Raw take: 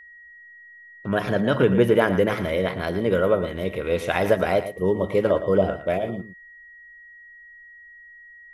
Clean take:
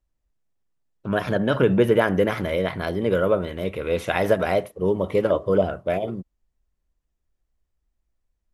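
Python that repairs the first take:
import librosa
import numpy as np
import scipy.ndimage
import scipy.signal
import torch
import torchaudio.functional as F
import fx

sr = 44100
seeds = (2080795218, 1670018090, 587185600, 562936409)

y = fx.notch(x, sr, hz=1900.0, q=30.0)
y = fx.fix_echo_inverse(y, sr, delay_ms=114, level_db=-12.0)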